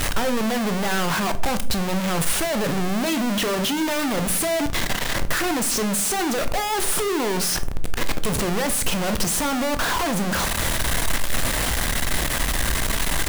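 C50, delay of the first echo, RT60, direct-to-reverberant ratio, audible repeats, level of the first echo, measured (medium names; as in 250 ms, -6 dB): 16.0 dB, no echo, 0.55 s, 10.0 dB, no echo, no echo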